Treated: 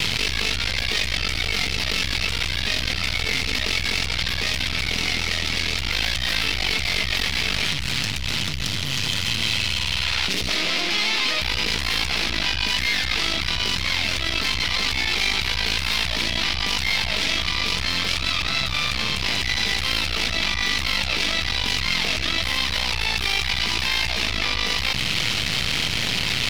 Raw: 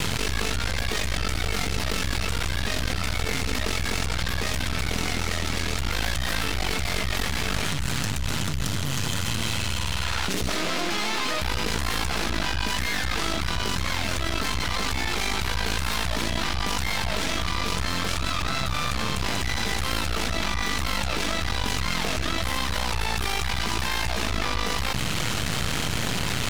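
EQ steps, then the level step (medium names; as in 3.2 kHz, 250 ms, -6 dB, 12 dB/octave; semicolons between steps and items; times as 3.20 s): high-order bell 3.3 kHz +10 dB; -2.0 dB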